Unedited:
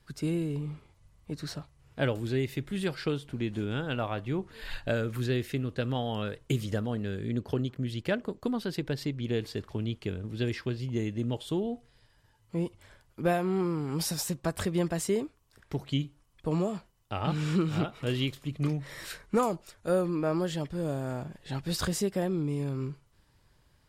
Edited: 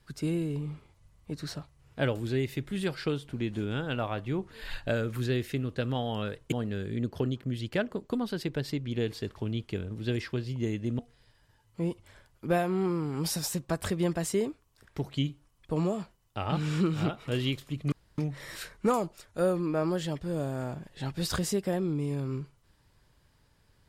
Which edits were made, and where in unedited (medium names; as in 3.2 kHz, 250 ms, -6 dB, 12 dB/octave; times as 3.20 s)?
6.52–6.85 s: delete
11.32–11.74 s: delete
18.67 s: insert room tone 0.26 s